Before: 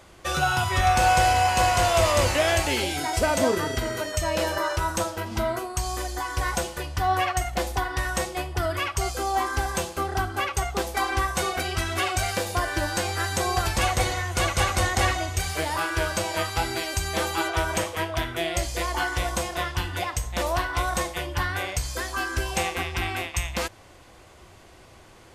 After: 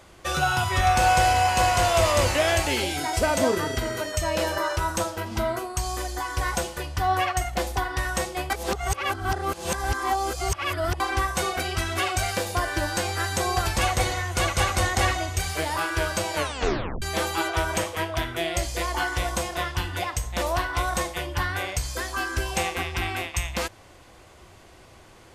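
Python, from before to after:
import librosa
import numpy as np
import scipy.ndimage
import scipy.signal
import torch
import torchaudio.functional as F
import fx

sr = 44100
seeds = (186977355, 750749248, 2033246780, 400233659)

y = fx.edit(x, sr, fx.reverse_span(start_s=8.5, length_s=2.5),
    fx.tape_stop(start_s=16.35, length_s=0.67), tone=tone)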